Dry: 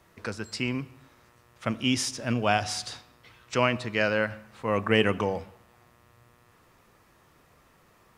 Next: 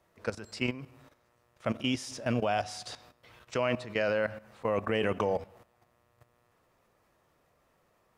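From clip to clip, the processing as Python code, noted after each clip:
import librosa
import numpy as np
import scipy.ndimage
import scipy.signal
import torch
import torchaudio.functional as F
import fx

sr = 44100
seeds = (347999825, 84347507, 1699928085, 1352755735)

y = fx.peak_eq(x, sr, hz=600.0, db=7.0, octaves=0.88)
y = fx.level_steps(y, sr, step_db=14)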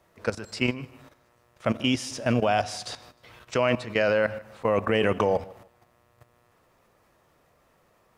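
y = fx.echo_feedback(x, sr, ms=153, feedback_pct=26, wet_db=-22.0)
y = y * librosa.db_to_amplitude(6.0)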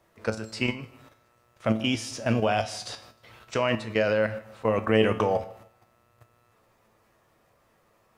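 y = fx.comb_fb(x, sr, f0_hz=110.0, decay_s=0.35, harmonics='all', damping=0.0, mix_pct=70)
y = y * librosa.db_to_amplitude(6.0)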